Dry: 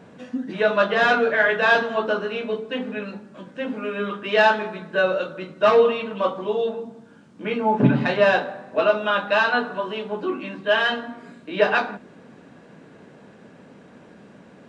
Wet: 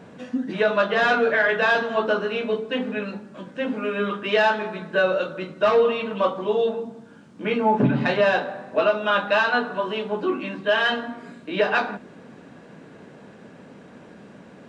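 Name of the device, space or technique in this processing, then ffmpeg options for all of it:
soft clipper into limiter: -af "asoftclip=type=tanh:threshold=0.531,alimiter=limit=0.237:level=0:latency=1:release=316,volume=1.26"

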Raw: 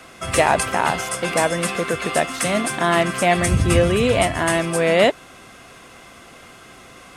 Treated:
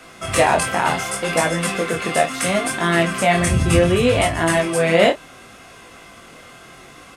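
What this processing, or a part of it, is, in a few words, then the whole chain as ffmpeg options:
double-tracked vocal: -filter_complex "[0:a]asplit=2[s0][s1];[s1]adelay=30,volume=0.282[s2];[s0][s2]amix=inputs=2:normalize=0,flanger=delay=18:depth=6.3:speed=0.69,volume=1.5"

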